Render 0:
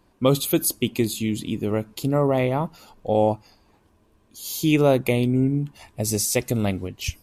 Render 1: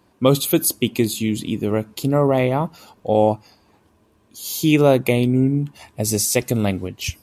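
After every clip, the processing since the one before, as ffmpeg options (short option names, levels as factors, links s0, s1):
-af "highpass=76,volume=1.5"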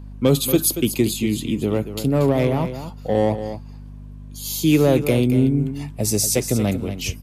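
-filter_complex "[0:a]acrossover=split=230|510|3500[s0][s1][s2][s3];[s2]asoftclip=type=tanh:threshold=0.0596[s4];[s0][s1][s4][s3]amix=inputs=4:normalize=0,aeval=exprs='val(0)+0.0178*(sin(2*PI*50*n/s)+sin(2*PI*2*50*n/s)/2+sin(2*PI*3*50*n/s)/3+sin(2*PI*4*50*n/s)/4+sin(2*PI*5*50*n/s)/5)':c=same,aecho=1:1:233:0.299"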